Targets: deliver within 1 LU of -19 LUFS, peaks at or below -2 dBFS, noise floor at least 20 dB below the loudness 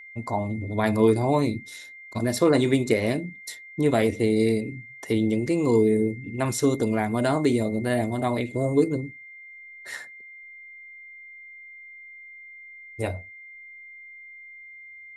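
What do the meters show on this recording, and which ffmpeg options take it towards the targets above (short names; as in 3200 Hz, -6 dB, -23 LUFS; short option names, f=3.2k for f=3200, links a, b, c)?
steady tone 2100 Hz; tone level -42 dBFS; loudness -24.0 LUFS; peak -7.5 dBFS; loudness target -19.0 LUFS
-> -af "bandreject=f=2.1k:w=30"
-af "volume=5dB"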